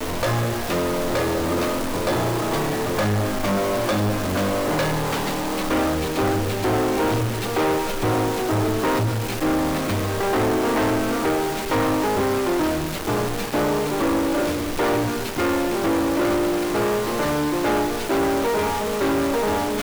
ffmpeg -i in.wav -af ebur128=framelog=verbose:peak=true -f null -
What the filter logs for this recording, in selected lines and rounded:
Integrated loudness:
  I:         -22.2 LUFS
  Threshold: -32.2 LUFS
Loudness range:
  LRA:         1.0 LU
  Threshold: -42.1 LUFS
  LRA low:   -22.6 LUFS
  LRA high:  -21.6 LUFS
True peak:
  Peak:      -16.9 dBFS